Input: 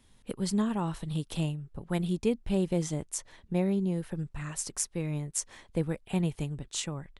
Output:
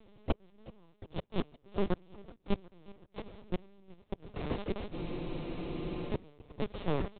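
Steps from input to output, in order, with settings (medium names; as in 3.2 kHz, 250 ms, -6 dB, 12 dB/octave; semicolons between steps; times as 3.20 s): spectral levelling over time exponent 0.2; gate -20 dBFS, range -39 dB; comb 5 ms, depth 37%; transient shaper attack -3 dB, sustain +7 dB; in parallel at -9.5 dB: decimation with a swept rate 24×, swing 60% 2.3 Hz; on the sum: inverted gate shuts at -20 dBFS, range -38 dB; on a send: feedback delay 370 ms, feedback 58%, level -20.5 dB; on the sum: LPC vocoder at 8 kHz pitch kept; spectral freeze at 4.94 s, 1.16 s; trim +6 dB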